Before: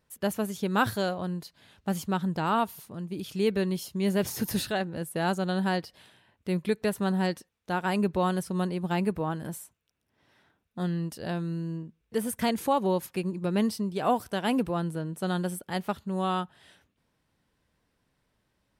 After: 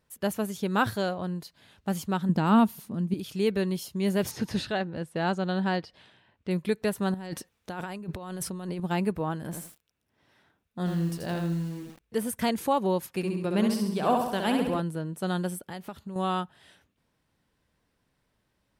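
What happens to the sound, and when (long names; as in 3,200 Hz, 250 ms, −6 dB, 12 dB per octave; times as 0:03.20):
0:00.77–0:01.36: high-shelf EQ 6,100 Hz −4.5 dB
0:02.29–0:03.14: parametric band 220 Hz +13 dB
0:04.31–0:06.51: low-pass filter 5,100 Hz
0:07.14–0:08.80: compressor whose output falls as the input rises −36 dBFS
0:09.43–0:12.23: feedback echo at a low word length 83 ms, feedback 35%, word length 8 bits, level −4 dB
0:13.08–0:14.80: flutter between parallel walls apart 11.4 metres, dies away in 0.84 s
0:15.57–0:16.16: downward compressor, threshold −34 dBFS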